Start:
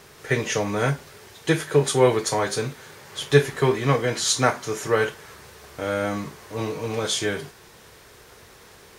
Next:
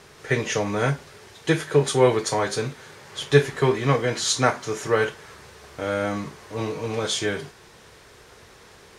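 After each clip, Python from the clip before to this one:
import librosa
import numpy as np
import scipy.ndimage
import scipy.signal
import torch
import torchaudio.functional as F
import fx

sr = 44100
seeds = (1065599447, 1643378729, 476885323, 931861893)

y = scipy.signal.sosfilt(scipy.signal.bessel(2, 8700.0, 'lowpass', norm='mag', fs=sr, output='sos'), x)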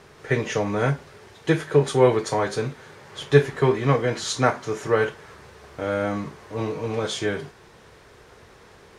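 y = fx.high_shelf(x, sr, hz=2700.0, db=-8.0)
y = F.gain(torch.from_numpy(y), 1.0).numpy()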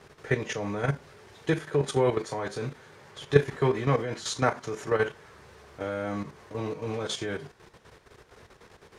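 y = fx.level_steps(x, sr, step_db=10)
y = F.gain(torch.from_numpy(y), -1.5).numpy()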